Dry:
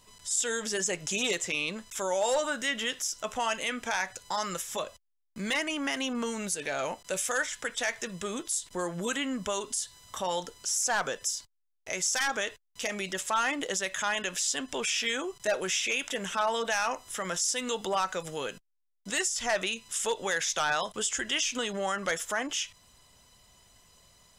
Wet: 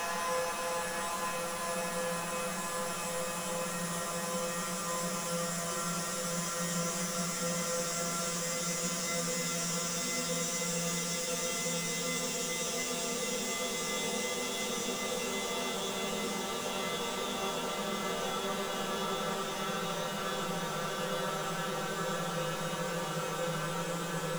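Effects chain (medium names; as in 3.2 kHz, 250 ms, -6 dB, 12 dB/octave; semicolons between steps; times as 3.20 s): feedback comb 170 Hz, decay 0.29 s, harmonics all, mix 90%; power-law waveshaper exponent 0.35; Paulstretch 19×, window 1.00 s, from 16.94 s; on a send: reverberation RT60 0.20 s, pre-delay 76 ms, DRR 13 dB; on the sum: trim -3 dB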